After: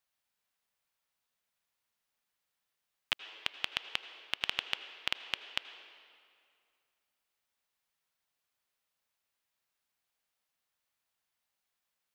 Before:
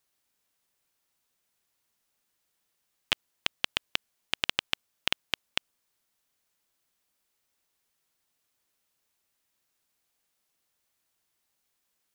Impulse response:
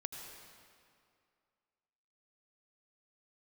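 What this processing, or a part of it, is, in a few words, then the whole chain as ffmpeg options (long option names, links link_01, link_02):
filtered reverb send: -filter_complex "[0:a]asplit=2[link_01][link_02];[link_02]highpass=frequency=330:width=0.5412,highpass=frequency=330:width=1.3066,lowpass=4800[link_03];[1:a]atrim=start_sample=2205[link_04];[link_03][link_04]afir=irnorm=-1:irlink=0,volume=-1dB[link_05];[link_01][link_05]amix=inputs=2:normalize=0,volume=-8.5dB"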